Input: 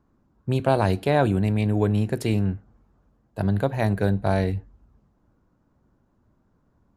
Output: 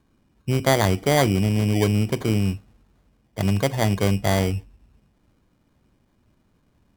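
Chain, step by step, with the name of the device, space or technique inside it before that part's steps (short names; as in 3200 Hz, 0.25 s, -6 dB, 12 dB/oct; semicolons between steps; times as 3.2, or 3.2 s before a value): crushed at another speed (playback speed 0.5×; sample-and-hold 33×; playback speed 2×); gain +1.5 dB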